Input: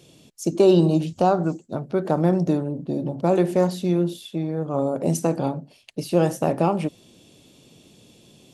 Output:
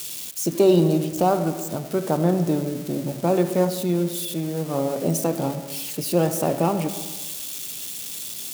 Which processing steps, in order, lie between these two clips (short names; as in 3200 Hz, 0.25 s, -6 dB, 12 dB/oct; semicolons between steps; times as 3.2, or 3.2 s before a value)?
switching spikes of -23 dBFS; reverb RT60 1.3 s, pre-delay 45 ms, DRR 10.5 dB; gain -1 dB